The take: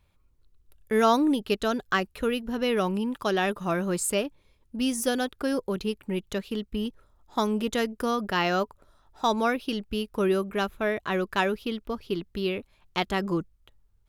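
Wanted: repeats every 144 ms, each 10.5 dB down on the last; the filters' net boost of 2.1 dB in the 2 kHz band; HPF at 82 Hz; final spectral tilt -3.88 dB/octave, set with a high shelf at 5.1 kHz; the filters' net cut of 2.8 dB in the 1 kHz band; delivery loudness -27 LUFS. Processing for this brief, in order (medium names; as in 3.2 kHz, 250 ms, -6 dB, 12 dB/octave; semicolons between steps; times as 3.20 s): high-pass 82 Hz; peaking EQ 1 kHz -5 dB; peaking EQ 2 kHz +4 dB; treble shelf 5.1 kHz +3 dB; feedback delay 144 ms, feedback 30%, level -10.5 dB; trim +0.5 dB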